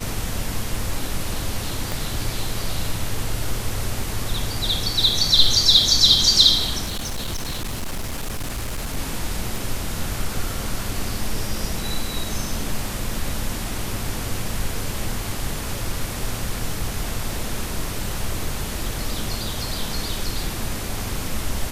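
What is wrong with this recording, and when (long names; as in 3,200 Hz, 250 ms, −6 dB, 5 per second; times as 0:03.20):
0:01.92: click
0:06.85–0:08.97: clipping −23 dBFS
0:09.56: click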